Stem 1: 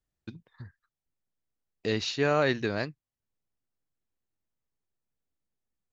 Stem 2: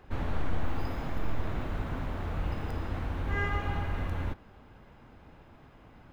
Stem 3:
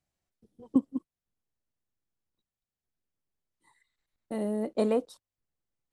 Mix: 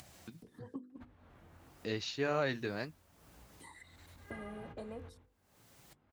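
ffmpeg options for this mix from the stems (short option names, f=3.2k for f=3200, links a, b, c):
-filter_complex "[0:a]volume=-4dB[a];[1:a]flanger=delay=17:depth=7:speed=0.82,adelay=900,volume=-3.5dB[b];[2:a]acompressor=mode=upward:threshold=-29dB:ratio=2.5,volume=-6dB,asplit=2[c][d];[d]apad=whole_len=309705[e];[b][e]sidechaingate=range=-21dB:threshold=-42dB:ratio=16:detection=peak[f];[f][c]amix=inputs=2:normalize=0,bandreject=f=50:t=h:w=6,bandreject=f=100:t=h:w=6,bandreject=f=150:t=h:w=6,bandreject=f=200:t=h:w=6,bandreject=f=250:t=h:w=6,bandreject=f=300:t=h:w=6,bandreject=f=350:t=h:w=6,bandreject=f=400:t=h:w=6,bandreject=f=450:t=h:w=6,bandreject=f=500:t=h:w=6,acompressor=threshold=-37dB:ratio=12,volume=0dB[g];[a][g]amix=inputs=2:normalize=0,highpass=64,acompressor=mode=upward:threshold=-45dB:ratio=2.5,flanger=delay=0.9:depth=6.9:regen=-61:speed=0.96:shape=triangular"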